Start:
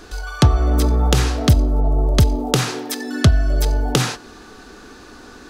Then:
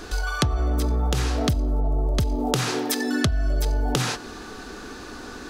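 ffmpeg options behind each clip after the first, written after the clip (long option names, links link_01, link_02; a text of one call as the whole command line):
ffmpeg -i in.wav -filter_complex "[0:a]asplit=2[link_01][link_02];[link_02]alimiter=limit=-12dB:level=0:latency=1,volume=1dB[link_03];[link_01][link_03]amix=inputs=2:normalize=0,acompressor=threshold=-16dB:ratio=6,volume=-3.5dB" out.wav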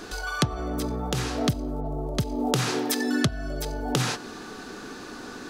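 ffmpeg -i in.wav -af "lowshelf=frequency=100:width_type=q:width=1.5:gain=-8.5,volume=-1.5dB" out.wav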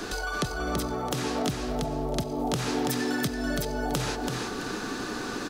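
ffmpeg -i in.wav -filter_complex "[0:a]acrossover=split=170|690[link_01][link_02][link_03];[link_01]acompressor=threshold=-41dB:ratio=4[link_04];[link_02]acompressor=threshold=-38dB:ratio=4[link_05];[link_03]acompressor=threshold=-38dB:ratio=4[link_06];[link_04][link_05][link_06]amix=inputs=3:normalize=0,asplit=2[link_07][link_08];[link_08]aecho=0:1:332|664|996|1328:0.631|0.183|0.0531|0.0154[link_09];[link_07][link_09]amix=inputs=2:normalize=0,volume=5dB" out.wav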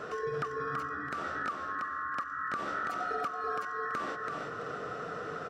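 ffmpeg -i in.wav -af "afftfilt=real='real(if(lt(b,960),b+48*(1-2*mod(floor(b/48),2)),b),0)':imag='imag(if(lt(b,960),b+48*(1-2*mod(floor(b/48),2)),b),0)':win_size=2048:overlap=0.75,bandpass=frequency=450:width_type=q:width=0.75:csg=0" out.wav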